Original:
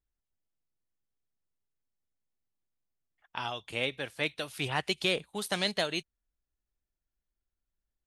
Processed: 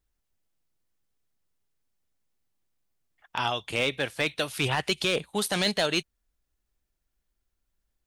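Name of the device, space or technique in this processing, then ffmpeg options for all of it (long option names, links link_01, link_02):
limiter into clipper: -af "alimiter=limit=-19.5dB:level=0:latency=1:release=19,asoftclip=type=hard:threshold=-24dB,volume=8dB"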